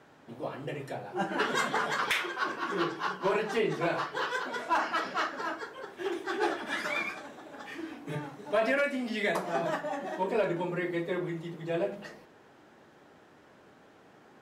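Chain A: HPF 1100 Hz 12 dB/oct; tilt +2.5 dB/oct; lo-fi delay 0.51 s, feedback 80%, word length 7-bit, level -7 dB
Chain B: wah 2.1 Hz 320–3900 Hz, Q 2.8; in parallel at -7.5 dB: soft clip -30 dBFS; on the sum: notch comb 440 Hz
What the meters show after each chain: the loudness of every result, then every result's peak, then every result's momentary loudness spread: -32.5, -38.0 LUFS; -8.5, -19.0 dBFS; 14, 15 LU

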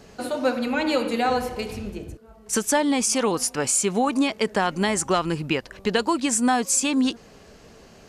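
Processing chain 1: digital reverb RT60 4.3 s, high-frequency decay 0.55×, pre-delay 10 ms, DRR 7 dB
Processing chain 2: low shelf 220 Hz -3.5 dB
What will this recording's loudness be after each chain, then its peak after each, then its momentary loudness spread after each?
-22.5, -23.5 LUFS; -8.5, -9.5 dBFS; 11, 10 LU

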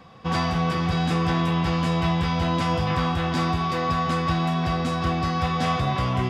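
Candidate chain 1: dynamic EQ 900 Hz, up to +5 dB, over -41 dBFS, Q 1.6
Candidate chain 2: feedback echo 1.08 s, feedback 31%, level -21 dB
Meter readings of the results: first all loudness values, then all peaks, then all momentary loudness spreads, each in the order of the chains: -22.5, -24.0 LUFS; -10.0, -11.5 dBFS; 1, 2 LU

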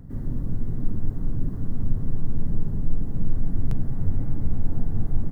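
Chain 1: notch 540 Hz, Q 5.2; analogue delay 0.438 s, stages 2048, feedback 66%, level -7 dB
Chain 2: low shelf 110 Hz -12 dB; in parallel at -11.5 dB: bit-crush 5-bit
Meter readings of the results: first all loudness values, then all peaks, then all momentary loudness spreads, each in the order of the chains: -29.5, -34.0 LUFS; -5.0, -16.0 dBFS; 3, 2 LU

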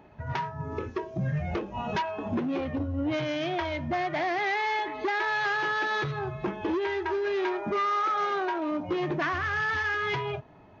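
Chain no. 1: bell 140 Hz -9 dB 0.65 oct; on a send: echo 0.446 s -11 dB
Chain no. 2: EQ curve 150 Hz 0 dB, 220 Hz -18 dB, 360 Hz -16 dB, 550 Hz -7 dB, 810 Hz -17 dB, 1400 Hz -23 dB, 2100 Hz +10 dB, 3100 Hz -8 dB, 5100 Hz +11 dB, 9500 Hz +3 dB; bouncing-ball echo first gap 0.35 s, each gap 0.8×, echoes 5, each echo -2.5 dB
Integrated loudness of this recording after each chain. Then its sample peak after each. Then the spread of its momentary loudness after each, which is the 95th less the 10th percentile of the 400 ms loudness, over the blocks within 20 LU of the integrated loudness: -29.5, -28.5 LUFS; -19.5, -14.5 dBFS; 8, 11 LU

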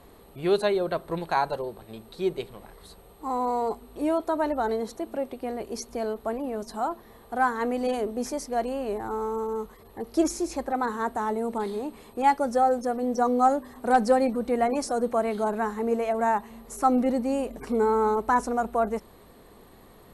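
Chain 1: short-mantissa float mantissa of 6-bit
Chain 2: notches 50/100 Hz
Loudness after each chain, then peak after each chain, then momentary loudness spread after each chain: -27.0, -27.0 LUFS; -10.5, -10.5 dBFS; 11, 11 LU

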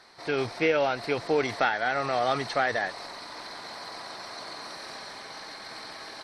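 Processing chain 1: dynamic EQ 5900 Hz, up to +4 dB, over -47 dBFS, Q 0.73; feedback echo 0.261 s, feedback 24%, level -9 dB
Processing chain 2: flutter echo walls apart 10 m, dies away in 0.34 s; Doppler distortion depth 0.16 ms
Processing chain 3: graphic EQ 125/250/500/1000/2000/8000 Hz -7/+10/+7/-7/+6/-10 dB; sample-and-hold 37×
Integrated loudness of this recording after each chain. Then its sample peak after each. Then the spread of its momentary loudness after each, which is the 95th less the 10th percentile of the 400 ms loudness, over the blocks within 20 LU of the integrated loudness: -29.0, -29.0, -22.0 LUFS; -10.5, -10.5, -8.5 dBFS; 13, 15, 21 LU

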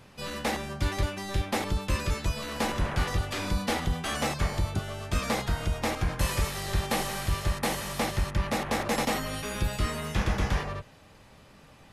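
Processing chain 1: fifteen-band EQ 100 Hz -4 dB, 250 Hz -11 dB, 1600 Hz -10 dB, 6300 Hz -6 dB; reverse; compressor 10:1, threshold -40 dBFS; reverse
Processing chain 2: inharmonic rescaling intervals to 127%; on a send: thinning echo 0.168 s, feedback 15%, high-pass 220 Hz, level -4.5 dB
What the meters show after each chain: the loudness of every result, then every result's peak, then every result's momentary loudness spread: -45.0, -33.5 LUFS; -30.5, -16.5 dBFS; 3, 3 LU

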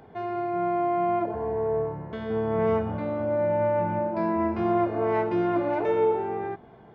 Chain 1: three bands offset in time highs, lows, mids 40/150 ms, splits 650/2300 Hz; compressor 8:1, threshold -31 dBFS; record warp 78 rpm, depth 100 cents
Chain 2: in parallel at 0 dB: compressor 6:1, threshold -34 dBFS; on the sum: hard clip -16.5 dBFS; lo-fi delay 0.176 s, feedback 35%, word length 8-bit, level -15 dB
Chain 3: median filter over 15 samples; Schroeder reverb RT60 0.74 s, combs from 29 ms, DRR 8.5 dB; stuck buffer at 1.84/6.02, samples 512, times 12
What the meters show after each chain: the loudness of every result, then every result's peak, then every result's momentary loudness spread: -35.0, -24.0, -25.5 LUFS; -24.0, -15.0, -13.0 dBFS; 3, 6, 9 LU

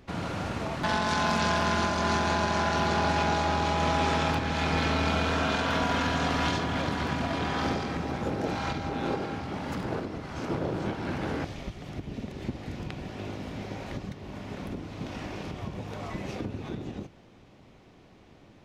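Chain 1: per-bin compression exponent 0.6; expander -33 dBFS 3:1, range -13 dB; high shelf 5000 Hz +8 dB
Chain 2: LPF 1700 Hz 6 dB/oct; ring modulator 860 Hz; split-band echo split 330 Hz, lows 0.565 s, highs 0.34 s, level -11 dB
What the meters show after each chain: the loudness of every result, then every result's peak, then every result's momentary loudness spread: -25.5, -33.0 LUFS; -9.5, -13.5 dBFS; 9, 11 LU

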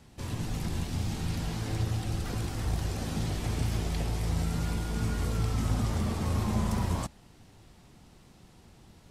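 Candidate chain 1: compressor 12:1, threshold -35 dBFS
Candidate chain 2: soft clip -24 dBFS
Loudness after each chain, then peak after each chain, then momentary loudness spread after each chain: -40.5, -33.5 LUFS; -26.5, -24.0 dBFS; 16, 3 LU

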